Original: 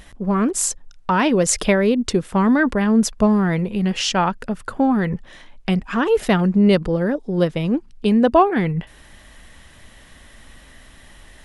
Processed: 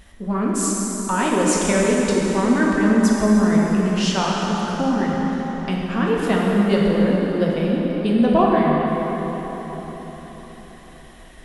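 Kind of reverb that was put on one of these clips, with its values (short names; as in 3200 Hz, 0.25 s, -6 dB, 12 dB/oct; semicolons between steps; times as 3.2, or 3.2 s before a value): plate-style reverb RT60 4.8 s, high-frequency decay 0.7×, DRR -4 dB; gain -6 dB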